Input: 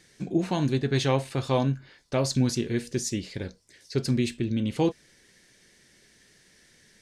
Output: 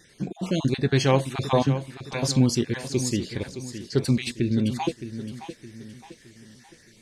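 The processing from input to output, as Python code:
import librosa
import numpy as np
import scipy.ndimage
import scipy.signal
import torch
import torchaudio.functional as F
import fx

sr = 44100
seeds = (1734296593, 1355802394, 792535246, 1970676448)

p1 = fx.spec_dropout(x, sr, seeds[0], share_pct=23)
p2 = p1 + fx.echo_feedback(p1, sr, ms=616, feedback_pct=41, wet_db=-11.5, dry=0)
y = F.gain(torch.from_numpy(p2), 4.0).numpy()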